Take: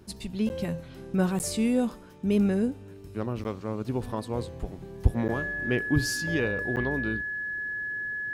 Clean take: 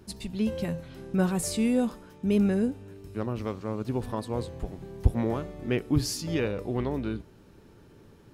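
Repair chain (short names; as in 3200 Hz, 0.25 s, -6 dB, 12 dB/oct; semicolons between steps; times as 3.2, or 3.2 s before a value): notch 1700 Hz, Q 30; interpolate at 0.49/1.39/3.44/5.28/6.76, 9.5 ms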